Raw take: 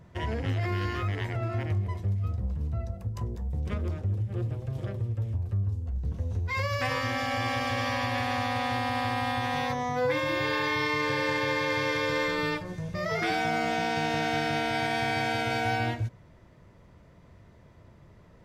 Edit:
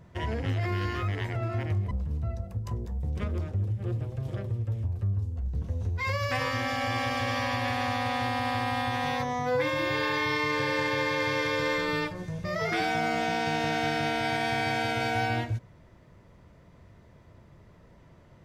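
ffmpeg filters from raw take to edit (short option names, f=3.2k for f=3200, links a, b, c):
-filter_complex "[0:a]asplit=2[a][b];[a]atrim=end=1.912[c];[b]atrim=start=2.408[d];[c][d]acrossfade=d=0.004:c1=hsin:c2=hsin"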